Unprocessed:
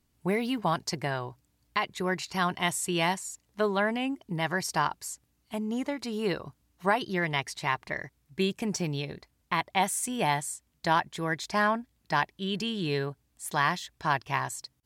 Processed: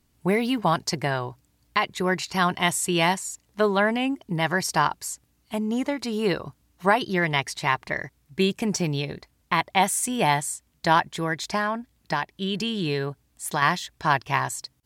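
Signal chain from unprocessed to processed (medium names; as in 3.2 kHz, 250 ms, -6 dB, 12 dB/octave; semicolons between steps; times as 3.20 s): 11.10–13.62 s: compression, threshold -27 dBFS, peak gain reduction 7 dB; trim +5.5 dB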